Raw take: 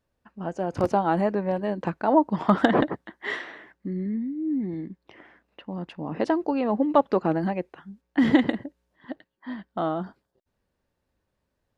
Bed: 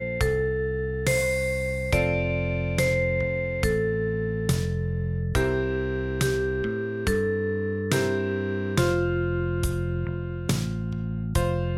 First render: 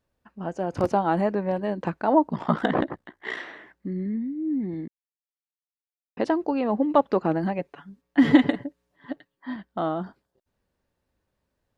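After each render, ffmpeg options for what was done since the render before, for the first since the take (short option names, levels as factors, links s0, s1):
-filter_complex "[0:a]asettb=1/sr,asplit=3[s0][s1][s2];[s0]atrim=end=2.284[s3];[s1]atrim=start=2.28:end=3.37,asetpts=PTS-STARTPTS,afade=t=in:d=0.004:c=qsin,afade=t=out:st=1.086:d=0.004:c=qsin,aeval=exprs='val(0)*sin(2*PI*30*n/s)':c=same[s4];[s2]atrim=start=3.366[s5];[s3][s4]acrossfade=d=0.004:c1=hsin:c2=qsin[s6];[s6][s5]acrossfade=d=0.004:c1=qsin:c2=hsin,asettb=1/sr,asplit=3[s7][s8][s9];[s7]atrim=end=7.584[s10];[s8]atrim=start=7.58:end=9.56,asetpts=PTS-STARTPTS,afade=t=in:d=0.004:c=qsin,afade=t=out:st=1.976:d=0.004:c=qsin,aecho=1:1:7:0.65,atrim=end_sample=87318[s11];[s9]atrim=start=9.556[s12];[s10][s11]acrossfade=d=0.004:c1=hsin:c2=qsin[s13];[s13][s12]acrossfade=d=0.004:c1=qsin:c2=hsin,asplit=3[s14][s15][s16];[s14]atrim=end=4.88,asetpts=PTS-STARTPTS,afade=t=out:st=4.876:d=0.004:c=hsin[s17];[s15]atrim=start=4.88:end=6.17,asetpts=PTS-STARTPTS,volume=0[s18];[s16]atrim=start=6.17,asetpts=PTS-STARTPTS,afade=t=in:d=0.004:c=hsin[s19];[s17][s18][s19]concat=n=3:v=0:a=1"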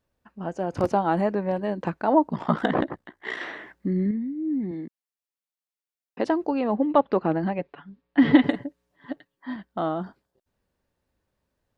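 -filter_complex "[0:a]asettb=1/sr,asplit=3[s0][s1][s2];[s0]atrim=end=4.714[s3];[s1]atrim=start=4.71:end=6.26,asetpts=PTS-STARTPTS,afade=t=in:d=0.004:c=qsin,afade=t=out:st=1.546:d=0.004:c=qsin,highpass=170[s4];[s2]atrim=start=6.256[s5];[s3][s4]acrossfade=d=0.004:c1=hsin:c2=qsin[s6];[s6][s5]acrossfade=d=0.004:c1=qsin:c2=hsin,asettb=1/sr,asplit=3[s7][s8][s9];[s7]atrim=end=6.764[s10];[s8]atrim=start=6.76:end=8.44,asetpts=PTS-STARTPTS,afade=t=in:d=0.004:c=qsin,afade=t=out:st=1.676:d=0.004:c=qsin,lowpass=f=4300:w=0.5412,lowpass=f=4300:w=1.3066[s11];[s9]atrim=start=8.436[s12];[s10][s11]acrossfade=d=0.004:c1=hsin:c2=qsin[s13];[s13][s12]acrossfade=d=0.004:c1=qsin:c2=hsin,asplit=3[s14][s15][s16];[s14]atrim=end=3.412[s17];[s15]atrim=start=3.408:end=4.112,asetpts=PTS-STARTPTS,volume=1.88[s18];[s16]atrim=start=4.108[s19];[s17][s18]acrossfade=d=0.004:c1=hsin:c2=hsin[s20];[s20][s19]acrossfade=d=0.004:c1=hsin:c2=hsin"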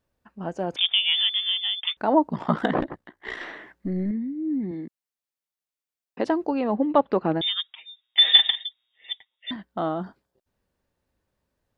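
-filter_complex "[0:a]asettb=1/sr,asplit=3[s0][s1][s2];[s0]atrim=end=0.764[s3];[s1]atrim=start=0.76:end=1.97,asetpts=PTS-STARTPTS,afade=t=in:d=0.004:c=qsin,afade=t=out:st=1.206:d=0.004:c=qsin,lowpass=f=3100:t=q:w=0.5098,lowpass=f=3100:t=q:w=0.6013,lowpass=f=3100:t=q:w=0.9,lowpass=f=3100:t=q:w=2.563,afreqshift=-3700[s4];[s2]atrim=start=1.966[s5];[s3][s4]acrossfade=d=0.004:c1=hsin:c2=qsin[s6];[s6][s5]acrossfade=d=0.004:c1=qsin:c2=hsin,asettb=1/sr,asplit=3[s7][s8][s9];[s7]atrim=end=2.794[s10];[s8]atrim=start=2.79:end=4.11,asetpts=PTS-STARTPTS,afade=t=in:d=0.004:c=qsin,afade=t=out:st=1.316:d=0.004:c=qsin,aeval=exprs='(tanh(5.62*val(0)+0.5)-tanh(0.5))/5.62':c=same[s11];[s9]atrim=start=4.106[s12];[s10][s11]acrossfade=d=0.004:c1=hsin:c2=qsin[s13];[s13][s12]acrossfade=d=0.004:c1=qsin:c2=hsin,asettb=1/sr,asplit=3[s14][s15][s16];[s14]atrim=end=7.414[s17];[s15]atrim=start=7.41:end=9.51,asetpts=PTS-STARTPTS,afade=t=in:d=0.004:c=qsin,afade=t=out:st=2.096:d=0.004:c=qsin,lowpass=f=3200:t=q:w=0.5098,lowpass=f=3200:t=q:w=0.6013,lowpass=f=3200:t=q:w=0.9,lowpass=f=3200:t=q:w=2.563,afreqshift=-3800[s18];[s16]atrim=start=9.506[s19];[s17][s18]acrossfade=d=0.004:c1=hsin:c2=qsin[s20];[s20][s19]acrossfade=d=0.004:c1=qsin:c2=hsin"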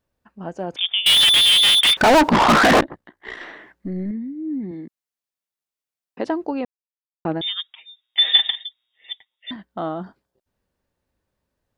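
-filter_complex "[0:a]asettb=1/sr,asplit=3[s0][s1][s2];[s0]atrim=end=1.064[s3];[s1]atrim=start=1.06:end=2.81,asetpts=PTS-STARTPTS,afade=t=in:d=0.004:c=qsin,afade=t=out:st=1.746:d=0.004:c=qsin,asplit=2[s4][s5];[s5]highpass=f=720:p=1,volume=112,asoftclip=type=tanh:threshold=0.501[s6];[s4][s6]amix=inputs=2:normalize=0,lowpass=f=4600:p=1,volume=0.501[s7];[s2]atrim=start=2.806[s8];[s3][s7]acrossfade=d=0.004:c1=hsin:c2=qsin[s9];[s9][s8]acrossfade=d=0.004:c1=qsin:c2=hsin,asplit=3[s10][s11][s12];[s10]atrim=end=6.65,asetpts=PTS-STARTPTS,afade=t=out:st=6.646:d=0.004:c=hsin[s13];[s11]atrim=start=6.65:end=7.25,asetpts=PTS-STARTPTS,volume=0[s14];[s12]atrim=start=7.25,asetpts=PTS-STARTPTS,afade=t=in:d=0.004:c=hsin[s15];[s13][s14][s15]concat=n=3:v=0:a=1"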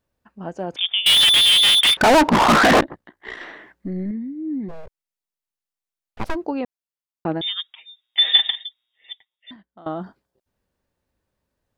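-filter_complex "[0:a]asettb=1/sr,asplit=3[s0][s1][s2];[s0]atrim=end=1.904[s3];[s1]atrim=start=1.9:end=2.57,asetpts=PTS-STARTPTS,afade=t=in:d=0.004:c=qsin,afade=t=out:st=0.666:d=0.004:c=qsin,adynamicsmooth=sensitivity=2.5:basefreq=2900[s4];[s2]atrim=start=2.566[s5];[s3][s4]acrossfade=d=0.004:c1=hsin:c2=qsin[s6];[s6][s5]acrossfade=d=0.004:c1=qsin:c2=hsin,asplit=3[s7][s8][s9];[s7]afade=t=out:st=4.68:d=0.02[s10];[s8]aeval=exprs='abs(val(0))':c=same,afade=t=in:st=4.68:d=0.02,afade=t=out:st=6.34:d=0.02[s11];[s9]afade=t=in:st=6.34:d=0.02[s12];[s10][s11][s12]amix=inputs=3:normalize=0,asplit=2[s13][s14];[s13]atrim=end=9.86,asetpts=PTS-STARTPTS,afade=t=out:st=8.6:d=1.26:silence=0.0891251[s15];[s14]atrim=start=9.86,asetpts=PTS-STARTPTS,afade=t=in:d=0.004:c=hsin:silence=0.0891251[s16];[s15][s16]concat=n=2:v=0:a=1"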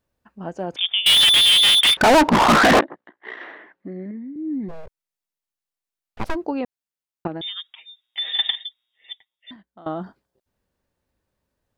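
-filter_complex "[0:a]asettb=1/sr,asplit=3[s0][s1][s2];[s0]atrim=end=2.794[s3];[s1]atrim=start=2.79:end=4.36,asetpts=PTS-STARTPTS,afade=t=in:d=0.004:c=qsin,afade=t=out:st=1.566:d=0.004:c=qsin,highpass=280,lowpass=2700[s4];[s2]atrim=start=4.356[s5];[s3][s4]acrossfade=d=0.004:c1=hsin:c2=qsin[s6];[s6][s5]acrossfade=d=0.004:c1=qsin:c2=hsin,asettb=1/sr,asplit=3[s7][s8][s9];[s7]atrim=end=7.274[s10];[s8]atrim=start=7.27:end=8.39,asetpts=PTS-STARTPTS,afade=t=in:d=0.004:c=qsin,afade=t=out:st=1.116:d=0.004:c=qsin,acompressor=threshold=0.0282:ratio=2:attack=3.2:release=140:knee=1:detection=peak[s11];[s9]atrim=start=8.386[s12];[s10][s11]acrossfade=d=0.004:c1=hsin:c2=qsin[s13];[s13][s12]acrossfade=d=0.004:c1=qsin:c2=hsin"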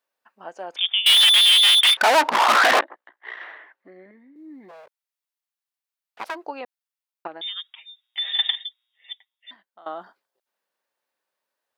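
-af "highpass=720,equalizer=f=7200:t=o:w=0.77:g=-2.5"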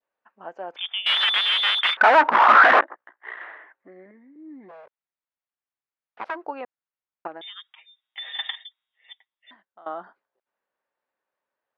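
-af "lowpass=2100,adynamicequalizer=threshold=0.0178:dfrequency=1400:dqfactor=1.5:tfrequency=1400:tqfactor=1.5:attack=5:release=100:ratio=0.375:range=3:mode=boostabove:tftype=bell"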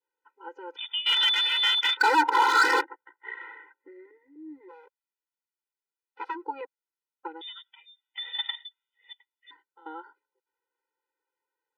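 -af "asoftclip=type=hard:threshold=0.178,afftfilt=real='re*eq(mod(floor(b*sr/1024/260),2),1)':imag='im*eq(mod(floor(b*sr/1024/260),2),1)':win_size=1024:overlap=0.75"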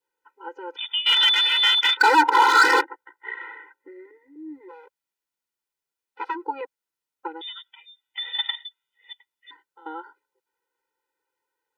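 -af "volume=1.78"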